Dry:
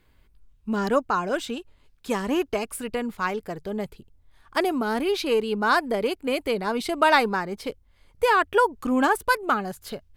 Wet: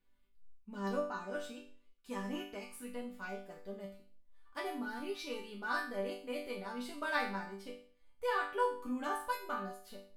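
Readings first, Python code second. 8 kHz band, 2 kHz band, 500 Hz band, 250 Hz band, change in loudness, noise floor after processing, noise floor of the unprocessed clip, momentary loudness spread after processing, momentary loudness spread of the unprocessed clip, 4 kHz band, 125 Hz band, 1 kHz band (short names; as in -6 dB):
-15.5 dB, -14.0 dB, -15.5 dB, -15.0 dB, -15.0 dB, -66 dBFS, -61 dBFS, 13 LU, 13 LU, -15.5 dB, under -10 dB, -15.0 dB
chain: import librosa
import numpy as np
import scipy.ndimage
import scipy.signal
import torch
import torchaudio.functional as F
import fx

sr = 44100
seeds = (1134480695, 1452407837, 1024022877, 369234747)

y = fx.resonator_bank(x, sr, root=55, chord='major', decay_s=0.46)
y = y * librosa.db_to_amplitude(3.0)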